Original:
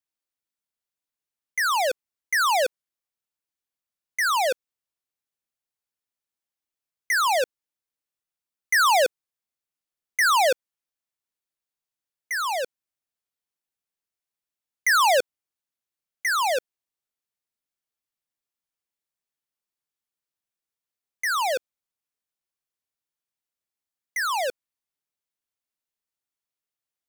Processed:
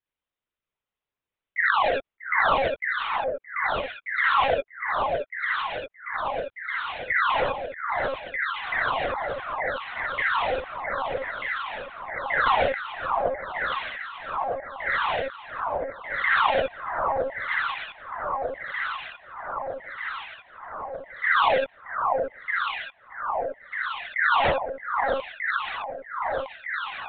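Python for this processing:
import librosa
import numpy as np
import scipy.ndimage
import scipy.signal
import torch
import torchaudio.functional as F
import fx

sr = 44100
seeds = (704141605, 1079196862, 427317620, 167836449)

y = fx.high_shelf(x, sr, hz=2700.0, db=-4.0)
y = fx.over_compress(y, sr, threshold_db=-25.0, ratio=-1.0)
y = y * np.sin(2.0 * np.pi * 57.0 * np.arange(len(y)) / sr)
y = fx.echo_alternate(y, sr, ms=624, hz=1200.0, feedback_pct=83, wet_db=-2.5)
y = fx.rev_gated(y, sr, seeds[0], gate_ms=90, shape='rising', drr_db=-1.5)
y = fx.lpc_monotone(y, sr, seeds[1], pitch_hz=270.0, order=16)
y = y * librosa.db_to_amplitude(2.5)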